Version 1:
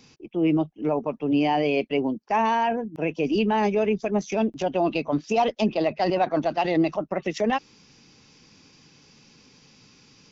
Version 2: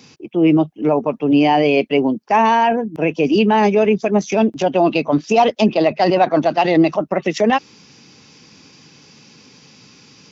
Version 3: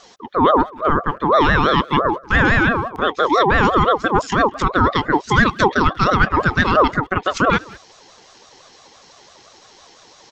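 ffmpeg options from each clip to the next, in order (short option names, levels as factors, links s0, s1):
-af "highpass=95,volume=2.66"
-filter_complex "[0:a]asplit=2[s0][s1];[s1]adelay=190,highpass=300,lowpass=3400,asoftclip=type=hard:threshold=0.237,volume=0.1[s2];[s0][s2]amix=inputs=2:normalize=0,aeval=exprs='val(0)*sin(2*PI*760*n/s+760*0.25/5.9*sin(2*PI*5.9*n/s))':c=same,volume=1.26"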